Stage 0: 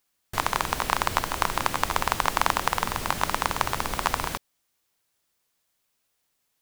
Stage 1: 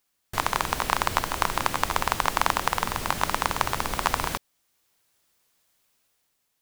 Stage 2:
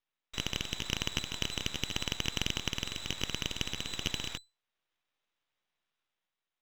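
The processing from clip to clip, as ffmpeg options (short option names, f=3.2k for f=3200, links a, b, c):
-af "dynaudnorm=f=130:g=9:m=5.5dB"
-af "lowpass=f=3.4k:t=q:w=0.5098,lowpass=f=3.4k:t=q:w=0.6013,lowpass=f=3.4k:t=q:w=0.9,lowpass=f=3.4k:t=q:w=2.563,afreqshift=-4000,aeval=exprs='max(val(0),0)':c=same,volume=-6dB"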